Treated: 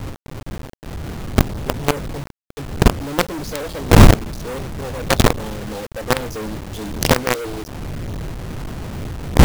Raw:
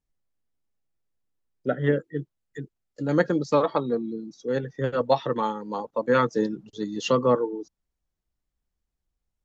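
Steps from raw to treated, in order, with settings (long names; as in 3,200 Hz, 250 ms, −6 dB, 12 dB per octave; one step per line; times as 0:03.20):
wind on the microphone 120 Hz −22 dBFS
Chebyshev band-stop filter 550–3,400 Hz, order 2
log-companded quantiser 2 bits
level −1 dB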